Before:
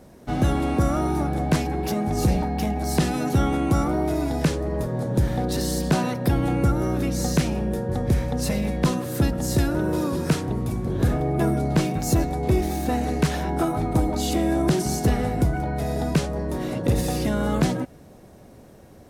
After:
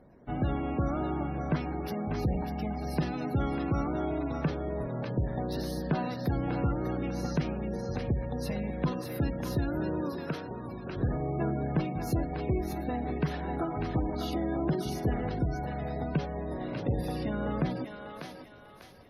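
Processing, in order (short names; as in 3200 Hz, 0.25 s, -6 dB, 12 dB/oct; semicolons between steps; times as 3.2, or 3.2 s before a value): bell 7600 Hz -13.5 dB 0.54 oct; thinning echo 0.596 s, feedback 43%, high-pass 710 Hz, level -4.5 dB; reverb RT60 0.95 s, pre-delay 7 ms, DRR 18 dB; spectral gate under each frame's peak -30 dB strong; 10.1–10.97 low shelf 170 Hz -11.5 dB; gain -8.5 dB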